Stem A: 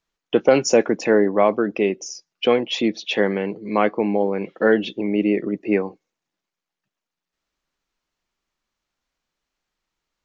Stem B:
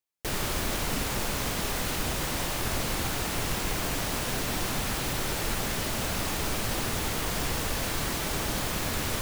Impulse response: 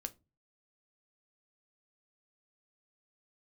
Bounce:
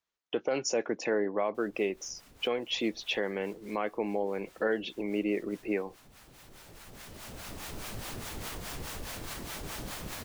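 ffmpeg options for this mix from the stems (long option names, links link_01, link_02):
-filter_complex "[0:a]highpass=59,equalizer=frequency=180:width_type=o:width=1.7:gain=-6.5,volume=-7dB,asplit=2[link_01][link_02];[1:a]alimiter=limit=-21.5dB:level=0:latency=1:release=99,acrossover=split=630[link_03][link_04];[link_03]aeval=exprs='val(0)*(1-0.7/2+0.7/2*cos(2*PI*4.8*n/s))':channel_layout=same[link_05];[link_04]aeval=exprs='val(0)*(1-0.7/2-0.7/2*cos(2*PI*4.8*n/s))':channel_layout=same[link_06];[link_05][link_06]amix=inputs=2:normalize=0,adelay=1300,volume=-5dB[link_07];[link_02]apad=whole_len=463593[link_08];[link_07][link_08]sidechaincompress=threshold=-45dB:ratio=5:attack=5:release=1310[link_09];[link_01][link_09]amix=inputs=2:normalize=0,alimiter=limit=-19.5dB:level=0:latency=1:release=202"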